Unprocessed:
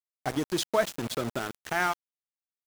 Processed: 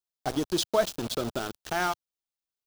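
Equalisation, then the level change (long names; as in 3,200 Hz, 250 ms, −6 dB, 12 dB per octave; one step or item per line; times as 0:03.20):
graphic EQ with 10 bands 125 Hz −8 dB, 250 Hz −5 dB, 500 Hz −4 dB, 1,000 Hz −5 dB, 2,000 Hz −12 dB, 8,000 Hz −4 dB, 16,000 Hz −7 dB
+7.5 dB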